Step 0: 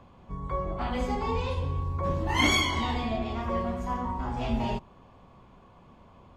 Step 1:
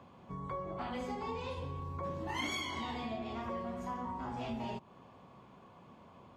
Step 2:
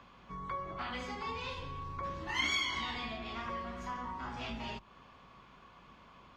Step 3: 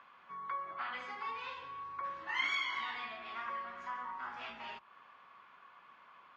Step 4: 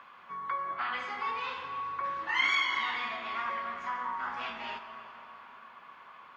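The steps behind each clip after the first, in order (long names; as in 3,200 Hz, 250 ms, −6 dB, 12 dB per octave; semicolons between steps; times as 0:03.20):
high-pass filter 120 Hz 12 dB per octave; downward compressor 3 to 1, threshold −37 dBFS, peak gain reduction 13 dB; level −1.5 dB
sub-octave generator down 2 octaves, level −3 dB; flat-topped bell 2,700 Hz +11 dB 2.8 octaves; level −4.5 dB
resonant band-pass 1,500 Hz, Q 1.3; level +2.5 dB
dense smooth reverb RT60 4.5 s, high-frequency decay 0.55×, DRR 7.5 dB; level +6.5 dB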